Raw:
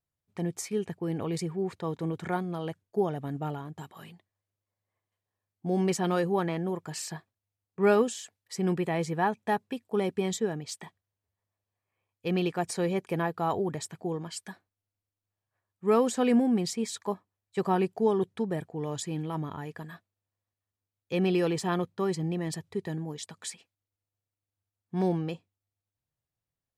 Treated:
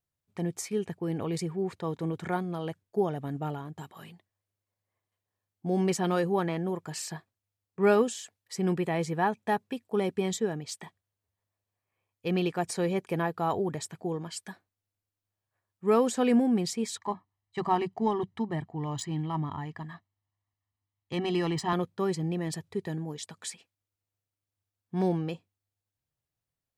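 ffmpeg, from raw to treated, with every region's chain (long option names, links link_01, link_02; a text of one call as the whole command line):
ffmpeg -i in.wav -filter_complex "[0:a]asettb=1/sr,asplit=3[link_01][link_02][link_03];[link_01]atrim=end=16.974[link_04];[link_02]atrim=start=16.97:end=21.73,asetpts=PTS-STARTPTS,afade=type=in:duration=0.004:curve=qsin,afade=type=out:start_time=4.756:duration=0.004:curve=qsin,bandreject=frequency=190:width=5.7,adynamicsmooth=sensitivity=7:basefreq=4600,aecho=1:1:1:0.67,atrim=end_sample=209916[link_05];[link_03]atrim=start=21.726[link_06];[link_04][link_05]acrossfade=duration=0.004:curve1=hsin:curve2=qsin[link_07];[link_07][link_06]acrossfade=duration=0.004:curve1=qsin:curve2=hsin" out.wav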